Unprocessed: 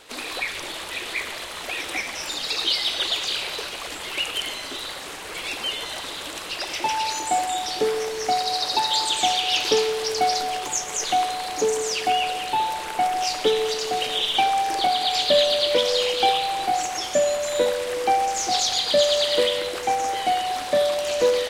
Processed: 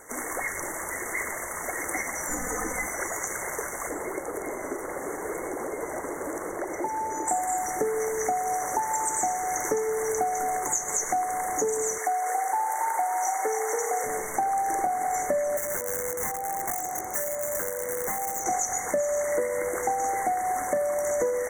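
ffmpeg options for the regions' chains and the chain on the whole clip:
-filter_complex "[0:a]asettb=1/sr,asplit=3[s0][s1][s2];[s0]atrim=end=2.294[s3];[s1]atrim=start=2.29:end=2.87,asetpts=PTS-STARTPTS,afade=t=in:d=0.004:c=qsin,afade=t=out:st=0.576:d=0.004:c=qsin,bass=f=250:g=10,treble=f=4000:g=-2,aecho=1:1:4:0.77,atrim=end_sample=25578[s4];[s2]atrim=start=2.866[s5];[s3][s4]acrossfade=d=0.004:c1=hsin:c2=qsin[s6];[s6][s5]acrossfade=d=0.004:c1=qsin:c2=hsin,asettb=1/sr,asplit=3[s7][s8][s9];[s7]atrim=end=3.894[s10];[s8]atrim=start=3.89:end=7.28,asetpts=PTS-STARTPTS,afade=t=in:d=0.004:c=qsin,afade=t=out:st=3.386:d=0.004:c=qsin,equalizer=f=380:w=0.97:g=10.5,acrossover=split=390|1400|3900[s11][s12][s13][s14];[s11]acompressor=threshold=0.01:ratio=3[s15];[s12]acompressor=threshold=0.02:ratio=3[s16];[s13]acompressor=threshold=0.00631:ratio=3[s17];[s14]acompressor=threshold=0.00398:ratio=3[s18];[s15][s16][s17][s18]amix=inputs=4:normalize=0[s19];[s9]atrim=start=7.276[s20];[s10][s19]acrossfade=d=0.004:c1=hsin:c2=qsin[s21];[s21][s20]acrossfade=d=0.004:c1=qsin:c2=hsin,asettb=1/sr,asplit=3[s22][s23][s24];[s22]atrim=end=11.984[s25];[s23]atrim=start=11.98:end=14.04,asetpts=PTS-STARTPTS,afade=t=in:d=0.004:c=qsin,afade=t=out:st=2.056:d=0.004:c=qsin,highpass=580,asplit=6[s26][s27][s28][s29][s30][s31];[s27]adelay=277,afreqshift=31,volume=0.631[s32];[s28]adelay=554,afreqshift=62,volume=0.226[s33];[s29]adelay=831,afreqshift=93,volume=0.0822[s34];[s30]adelay=1108,afreqshift=124,volume=0.0295[s35];[s31]adelay=1385,afreqshift=155,volume=0.0106[s36];[s26][s32][s33][s34][s35][s36]amix=inputs=6:normalize=0,atrim=end_sample=90846[s37];[s24]atrim=start=14.036[s38];[s25][s37]acrossfade=d=0.004:c1=hsin:c2=qsin[s39];[s39][s38]acrossfade=d=0.004:c1=qsin:c2=hsin,asettb=1/sr,asplit=3[s40][s41][s42];[s40]atrim=end=15.574[s43];[s41]atrim=start=15.57:end=18.46,asetpts=PTS-STARTPTS,afade=t=in:d=0.004:c=qsin,afade=t=out:st=2.886:d=0.004:c=qsin,highpass=f=52:w=0.5412,highpass=f=52:w=1.3066,acrossover=split=900|2200[s44][s45][s46];[s44]acompressor=threshold=0.0251:ratio=4[s47];[s45]acompressor=threshold=0.00501:ratio=4[s48];[s46]acompressor=threshold=0.0112:ratio=4[s49];[s47][s48][s49]amix=inputs=3:normalize=0,aeval=exprs='(mod(18.8*val(0)+1,2)-1)/18.8':c=same[s50];[s42]atrim=start=18.456[s51];[s43][s50]acrossfade=d=0.004:c1=hsin:c2=qsin[s52];[s52][s51]acrossfade=d=0.004:c1=qsin:c2=hsin,afftfilt=real='re*(1-between(b*sr/4096,2200,5800))':imag='im*(1-between(b*sr/4096,2200,5800))':win_size=4096:overlap=0.75,highshelf=f=8300:g=7.5,acompressor=threshold=0.0562:ratio=6,volume=1.19"

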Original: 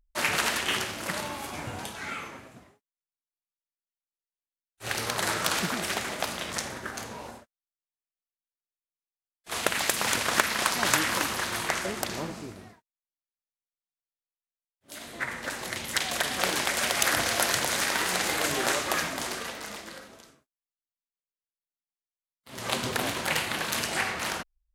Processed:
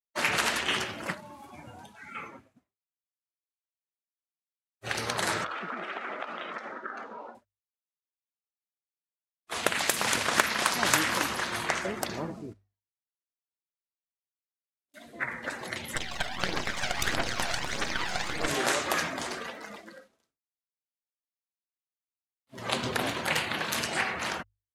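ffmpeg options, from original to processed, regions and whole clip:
-filter_complex "[0:a]asettb=1/sr,asplit=3[s0][s1][s2];[s0]atrim=end=1.134[s3];[s1]atrim=start=1.13:end=2.15,asetpts=PTS-STARTPTS,afade=t=in:d=0.004:c=qsin,afade=t=out:st=1.016:d=0.004:c=qsin,lowshelf=f=320:g=-5.5,acrossover=split=260|5100[s4][s5][s6];[s4]acompressor=threshold=0.00501:ratio=4[s7];[s5]acompressor=threshold=0.00794:ratio=4[s8];[s6]acompressor=threshold=0.00398:ratio=4[s9];[s7][s8][s9]amix=inputs=3:normalize=0[s10];[s2]atrim=start=2.146[s11];[s3][s10]acrossfade=d=0.004:c1=hsin:c2=qsin[s12];[s12][s11]acrossfade=d=0.004:c1=qsin:c2=hsin,asettb=1/sr,asplit=3[s13][s14][s15];[s13]atrim=end=5.444[s16];[s14]atrim=start=5.44:end=7.35,asetpts=PTS-STARTPTS,afade=t=in:d=0.004:c=qsin,afade=t=out:st=1.906:d=0.004:c=qsin,equalizer=f=1300:t=o:w=0.23:g=7.5,acompressor=threshold=0.0355:ratio=6:attack=3.2:release=140:knee=1:detection=peak,highpass=260,lowpass=3400[s17];[s15]atrim=start=7.346[s18];[s16][s17]acrossfade=d=0.004:c1=hsin:c2=qsin[s19];[s19][s18]acrossfade=d=0.004:c1=qsin:c2=hsin,asettb=1/sr,asplit=3[s20][s21][s22];[s20]atrim=end=12.534[s23];[s21]atrim=start=12.53:end=14.94,asetpts=PTS-STARTPTS,afade=t=in:d=0.004:c=qsin,afade=t=out:st=2.406:d=0.004:c=qsin,lowpass=9200,acompressor=threshold=0.00224:ratio=12:attack=3.2:release=140:knee=1:detection=peak[s24];[s22]atrim=start=14.936[s25];[s23][s24]acrossfade=d=0.004:c1=hsin:c2=qsin[s26];[s26][s25]acrossfade=d=0.004:c1=qsin:c2=hsin,asettb=1/sr,asplit=3[s27][s28][s29];[s27]atrim=end=15.954[s30];[s28]atrim=start=15.95:end=18.48,asetpts=PTS-STARTPTS,afade=t=in:d=0.004:c=qsin,afade=t=out:st=2.526:d=0.004:c=qsin,equalizer=f=12000:w=0.73:g=-7.5,aphaser=in_gain=1:out_gain=1:delay=1.5:decay=0.5:speed=1.6:type=triangular,aeval=exprs='max(val(0),0)':c=same[s31];[s29]atrim=start=18.476[s32];[s30][s31]acrossfade=d=0.004:c1=hsin:c2=qsin[s33];[s33][s32]acrossfade=d=0.004:c1=qsin:c2=hsin,agate=range=0.0224:threshold=0.00708:ratio=3:detection=peak,afftdn=nr=15:nf=-39,bandreject=f=50:t=h:w=6,bandreject=f=100:t=h:w=6"

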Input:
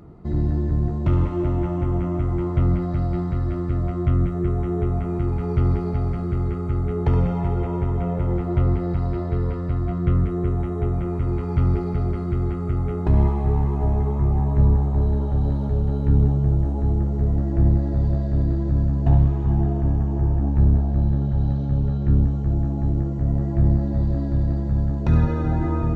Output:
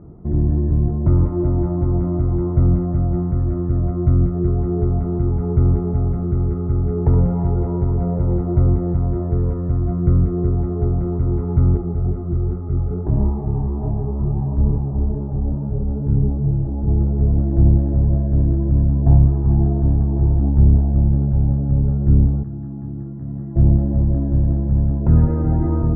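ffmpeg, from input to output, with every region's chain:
-filter_complex "[0:a]asettb=1/sr,asplit=3[s0][s1][s2];[s0]atrim=end=11.774[s3];[s1]atrim=start=11.77:end=16.88,asetpts=PTS-STARTPTS,afade=t=in:d=0.004:c=qsin,afade=t=out:st=5.106:d=0.004:c=qsin,lowpass=f=2000:p=1,flanger=delay=20:depth=5.2:speed=2.3[s4];[s2]atrim=start=16.876[s5];[s3][s4]acrossfade=d=0.004:c1=hsin:c2=qsin[s6];[s6][s5]acrossfade=d=0.004:c1=qsin:c2=hsin,asettb=1/sr,asplit=3[s7][s8][s9];[s7]atrim=end=22.434[s10];[s8]atrim=start=22.43:end=23.56,asetpts=PTS-STARTPTS,afade=t=in:d=0.004:c=qsin,afade=t=out:st=1.126:d=0.004:c=qsin,highpass=190,equalizer=f=550:w=0.78:g=-15[s11];[s9]atrim=start=23.556[s12];[s10][s11]acrossfade=d=0.004:c1=hsin:c2=qsin[s13];[s13][s12]acrossfade=d=0.004:c1=qsin:c2=hsin,lowpass=f=1900:w=0.5412,lowpass=f=1900:w=1.3066,tiltshelf=f=1300:g=9.5,volume=0.562"

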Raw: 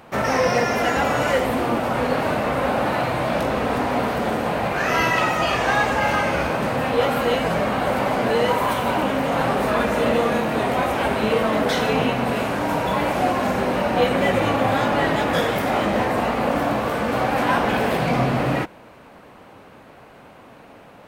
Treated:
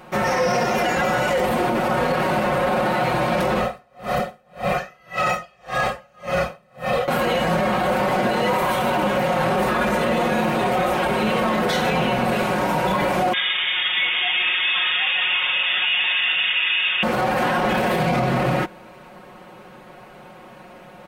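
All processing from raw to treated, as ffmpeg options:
-filter_complex "[0:a]asettb=1/sr,asplit=3[s0][s1][s2];[s0]atrim=end=3.604[s3];[s1]atrim=start=3.6:end=7.08,asetpts=PTS-STARTPTS,afade=t=in:d=0.004:c=qsin,afade=t=out:st=3.476:d=0.004:c=qsin,aecho=1:1:1.6:0.65,atrim=end_sample=153468,aeval=exprs='val(0)*pow(10,-40*(0.5-0.5*cos(2*PI*1.8*n/s))/20)':c=same[s4];[s2]atrim=start=7.076[s5];[s3][s4]acrossfade=d=0.004:c1=hsin:c2=qsin[s6];[s6][s5]acrossfade=d=0.004:c1=qsin:c2=hsin,asettb=1/sr,asplit=3[s7][s8][s9];[s7]atrim=end=13.334[s10];[s8]atrim=start=13.33:end=17.03,asetpts=PTS-STARTPTS,afade=t=in:d=0.004:c=qsin,afade=t=out:st=3.696:d=0.004:c=qsin,asubboost=boost=12:cutoff=120,aeval=exprs='val(0)*sin(2*PI*1000*n/s)':c=same,lowpass=f=3100:t=q:w=0.5098,lowpass=f=3100:t=q:w=0.6013,lowpass=f=3100:t=q:w=0.9,lowpass=f=3100:t=q:w=2.563,afreqshift=-3700[s11];[s9]atrim=start=17.026[s12];[s10][s11]acrossfade=d=0.004:c1=hsin:c2=qsin[s13];[s13][s12]acrossfade=d=0.004:c1=qsin:c2=hsin,aecho=1:1:5.5:0.9,alimiter=limit=0.251:level=0:latency=1:release=17"

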